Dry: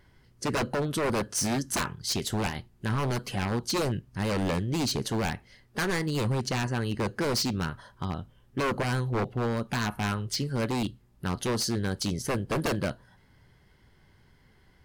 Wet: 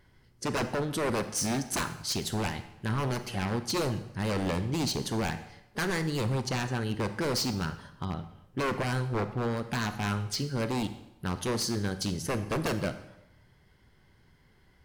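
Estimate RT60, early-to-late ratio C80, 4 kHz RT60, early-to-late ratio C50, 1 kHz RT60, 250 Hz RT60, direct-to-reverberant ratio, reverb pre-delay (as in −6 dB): 0.90 s, 14.0 dB, 0.75 s, 12.0 dB, 0.85 s, 0.95 s, 10.5 dB, 32 ms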